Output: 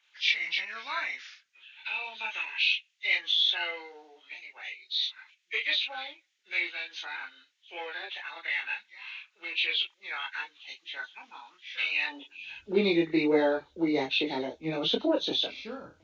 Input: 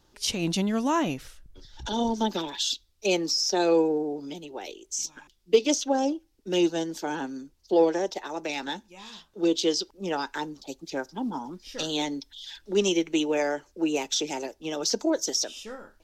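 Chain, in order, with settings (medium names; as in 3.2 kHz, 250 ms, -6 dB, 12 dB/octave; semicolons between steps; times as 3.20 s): knee-point frequency compression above 1.4 kHz 1.5:1; chorus voices 6, 0.25 Hz, delay 27 ms, depth 4.2 ms; high-pass sweep 1.9 kHz -> 87 Hz, 12.02–12.56 s; trim +3 dB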